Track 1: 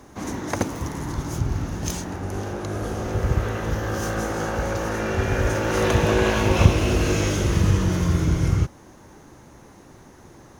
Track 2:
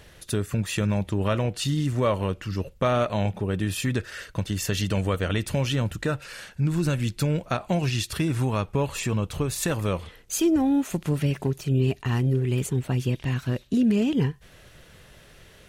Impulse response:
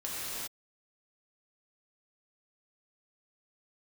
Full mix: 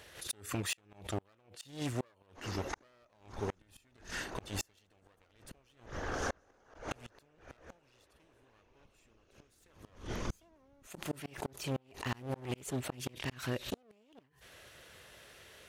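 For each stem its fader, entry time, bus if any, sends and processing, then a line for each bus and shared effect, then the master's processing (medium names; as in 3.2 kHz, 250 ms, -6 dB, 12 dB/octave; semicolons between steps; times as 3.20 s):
-3.0 dB, 2.20 s, no send, low-pass 6.4 kHz 12 dB/octave; whisper effect; auto duck -8 dB, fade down 0.35 s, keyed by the second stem
-2.5 dB, 0.00 s, muted 5.86–6.91 s, no send, one-sided wavefolder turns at -25 dBFS; high-pass 92 Hz 12 dB/octave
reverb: none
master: peaking EQ 160 Hz -11 dB 1.6 oct; inverted gate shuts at -24 dBFS, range -36 dB; swell ahead of each attack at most 140 dB/s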